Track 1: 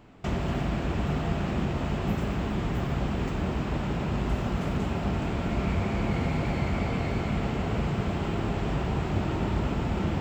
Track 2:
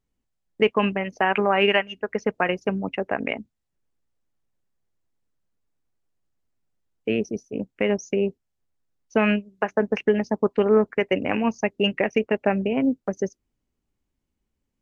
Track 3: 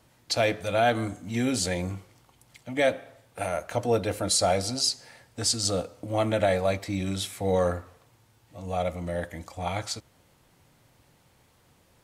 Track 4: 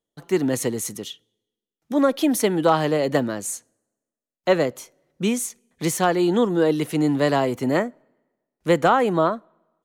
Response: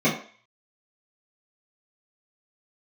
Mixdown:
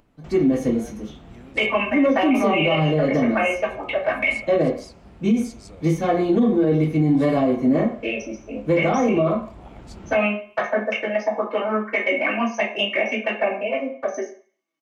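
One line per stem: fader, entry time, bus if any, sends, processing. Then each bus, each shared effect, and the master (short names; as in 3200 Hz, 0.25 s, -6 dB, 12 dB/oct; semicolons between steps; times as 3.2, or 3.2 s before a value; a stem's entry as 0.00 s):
-13.5 dB, 0.00 s, no send, low shelf 340 Hz +11 dB; upward compressor, threshold -39 dBFS; bell 110 Hz -11.5 dB 2.2 oct; auto duck -7 dB, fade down 1.95 s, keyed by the fourth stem
+1.0 dB, 0.95 s, send -7 dB, HPF 870 Hz 12 dB/oct; comb 3.3 ms, depth 40%; envelope flanger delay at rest 6.5 ms, full sweep at -22 dBFS
-10.0 dB, 0.00 s, no send, harmonic-percussive split harmonic -8 dB; tilt shelf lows +5 dB; compressor, threshold -33 dBFS, peak gain reduction 13.5 dB
-10.5 dB, 0.00 s, send -4.5 dB, soft clip -10.5 dBFS, distortion -19 dB; upward expander 1.5:1, over -33 dBFS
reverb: on, RT60 0.45 s, pre-delay 3 ms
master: limiter -10.5 dBFS, peak gain reduction 10 dB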